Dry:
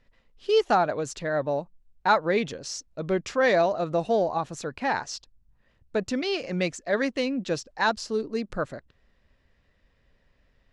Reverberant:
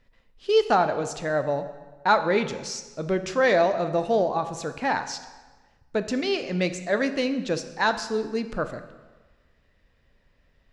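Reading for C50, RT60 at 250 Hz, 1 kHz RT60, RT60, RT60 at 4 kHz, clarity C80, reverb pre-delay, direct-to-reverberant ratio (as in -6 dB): 11.0 dB, 1.3 s, 1.3 s, 1.3 s, 1.1 s, 12.5 dB, 11 ms, 9.0 dB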